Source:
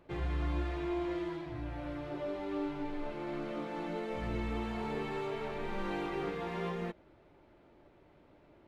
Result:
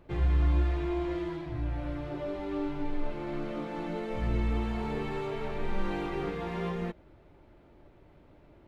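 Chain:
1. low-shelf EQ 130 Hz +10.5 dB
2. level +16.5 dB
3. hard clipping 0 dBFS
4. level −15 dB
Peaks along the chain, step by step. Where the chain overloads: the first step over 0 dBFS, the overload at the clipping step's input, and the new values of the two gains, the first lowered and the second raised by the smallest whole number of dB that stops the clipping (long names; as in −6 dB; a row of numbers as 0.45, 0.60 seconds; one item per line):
−18.0, −1.5, −1.5, −16.5 dBFS
no step passes full scale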